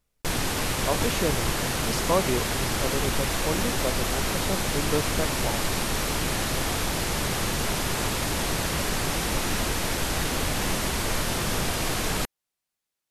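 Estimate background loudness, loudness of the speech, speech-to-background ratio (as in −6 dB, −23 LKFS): −26.5 LKFS, −31.5 LKFS, −5.0 dB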